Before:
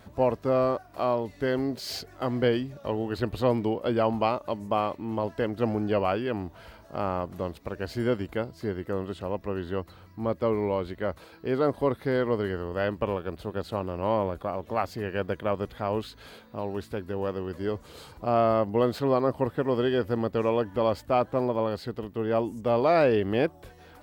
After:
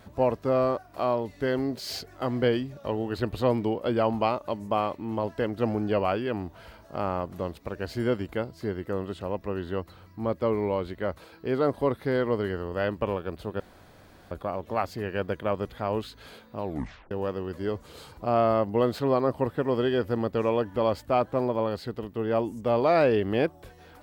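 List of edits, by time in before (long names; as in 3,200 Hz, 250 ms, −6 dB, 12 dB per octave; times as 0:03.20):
0:13.60–0:14.31: fill with room tone
0:16.65: tape stop 0.46 s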